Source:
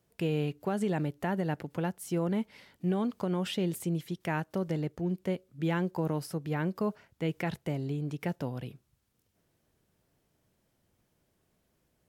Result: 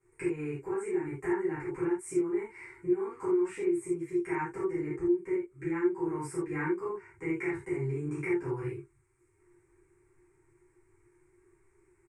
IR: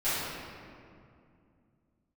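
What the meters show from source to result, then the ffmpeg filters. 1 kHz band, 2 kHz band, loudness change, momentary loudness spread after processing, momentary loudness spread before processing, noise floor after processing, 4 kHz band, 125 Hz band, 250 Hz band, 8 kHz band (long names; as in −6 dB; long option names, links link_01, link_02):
−2.0 dB, +1.0 dB, +0.5 dB, 6 LU, 5 LU, −69 dBFS, below −15 dB, −7.5 dB, +0.5 dB, −0.5 dB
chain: -filter_complex "[0:a]firequalizer=gain_entry='entry(110,0);entry(240,-26);entry(350,14);entry(590,-25);entry(950,2);entry(1400,-3);entry(2200,3);entry(3200,-29);entry(8400,4);entry(13000,-28)':delay=0.05:min_phase=1,acompressor=threshold=-36dB:ratio=6[link_01];[1:a]atrim=start_sample=2205,atrim=end_sample=4410[link_02];[link_01][link_02]afir=irnorm=-1:irlink=0"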